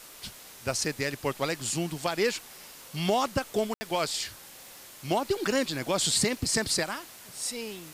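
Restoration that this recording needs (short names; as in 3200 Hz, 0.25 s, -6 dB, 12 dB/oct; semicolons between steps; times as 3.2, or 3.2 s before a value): de-click; room tone fill 3.74–3.81; denoiser 26 dB, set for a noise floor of -48 dBFS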